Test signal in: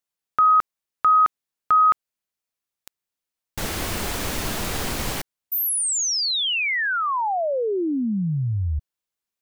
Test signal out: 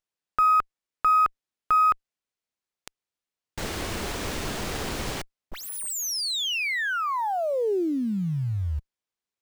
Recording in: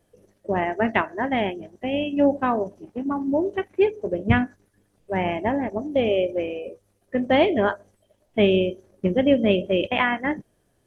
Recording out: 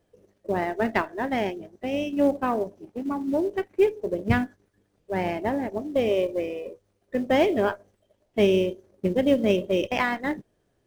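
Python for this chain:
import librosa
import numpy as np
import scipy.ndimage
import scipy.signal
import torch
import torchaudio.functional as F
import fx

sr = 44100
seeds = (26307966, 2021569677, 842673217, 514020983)

p1 = fx.quant_float(x, sr, bits=2)
p2 = x + (p1 * librosa.db_to_amplitude(-8.5))
p3 = fx.peak_eq(p2, sr, hz=410.0, db=3.0, octaves=0.77)
p4 = fx.running_max(p3, sr, window=3)
y = p4 * librosa.db_to_amplitude(-6.5)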